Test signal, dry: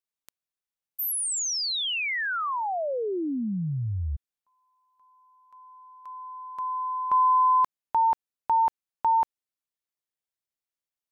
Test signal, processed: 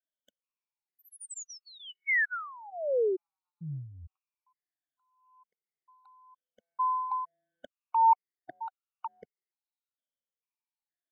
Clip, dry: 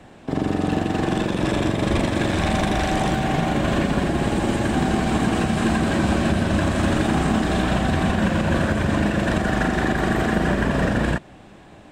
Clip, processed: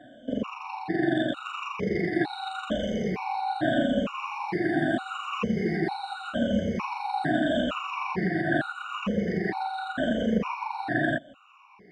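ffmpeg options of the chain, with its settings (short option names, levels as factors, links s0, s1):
-filter_complex "[0:a]afftfilt=real='re*pow(10,23/40*sin(2*PI*(0.82*log(max(b,1)*sr/1024/100)/log(2)-(-0.81)*(pts-256)/sr)))':imag='im*pow(10,23/40*sin(2*PI*(0.82*log(max(b,1)*sr/1024/100)/log(2)-(-0.81)*(pts-256)/sr)))':win_size=1024:overlap=0.75,acrossover=split=160 4300:gain=0.112 1 0.126[s0][s1][s2];[s0][s1][s2]amix=inputs=3:normalize=0,afftfilt=real='re*gt(sin(2*PI*1.1*pts/sr)*(1-2*mod(floor(b*sr/1024/740),2)),0)':imag='im*gt(sin(2*PI*1.1*pts/sr)*(1-2*mod(floor(b*sr/1024/740),2)),0)':win_size=1024:overlap=0.75,volume=0.422"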